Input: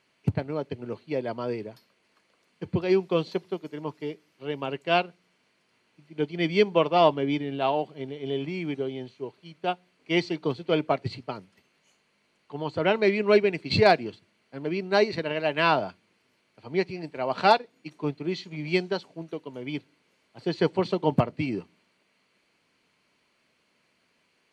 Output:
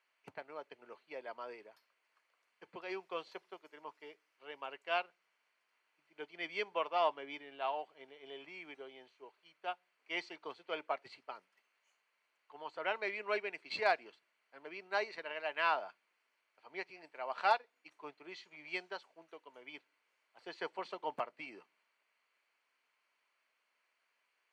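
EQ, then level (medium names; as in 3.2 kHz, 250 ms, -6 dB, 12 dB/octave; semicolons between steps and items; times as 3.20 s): high-pass 1 kHz 12 dB/octave; treble shelf 2.6 kHz -9.5 dB; peaking EQ 3.9 kHz -4 dB 0.72 oct; -4.5 dB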